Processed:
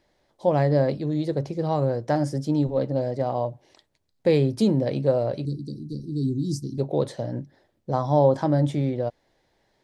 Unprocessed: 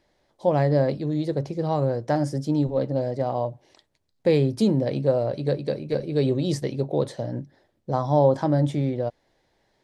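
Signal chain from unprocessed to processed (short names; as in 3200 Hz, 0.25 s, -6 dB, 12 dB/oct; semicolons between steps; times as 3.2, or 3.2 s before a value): 5.45–6.78 elliptic band-stop 300–5000 Hz, stop band 40 dB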